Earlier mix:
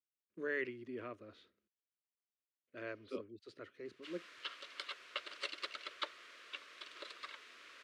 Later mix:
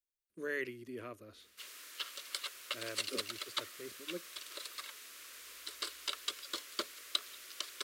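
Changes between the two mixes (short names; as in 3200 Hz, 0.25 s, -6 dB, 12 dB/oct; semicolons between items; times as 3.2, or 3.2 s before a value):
background: entry -2.45 s; master: remove BPF 110–3000 Hz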